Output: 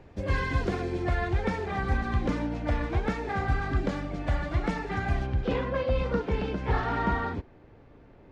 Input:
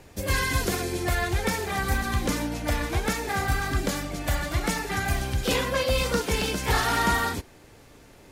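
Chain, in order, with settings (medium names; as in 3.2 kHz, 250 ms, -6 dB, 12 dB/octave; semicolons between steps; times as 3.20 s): tape spacing loss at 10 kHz 31 dB, from 5.25 s at 10 kHz 45 dB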